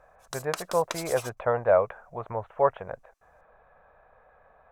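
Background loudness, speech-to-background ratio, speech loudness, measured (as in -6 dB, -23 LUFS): -38.0 LUFS, 10.5 dB, -27.5 LUFS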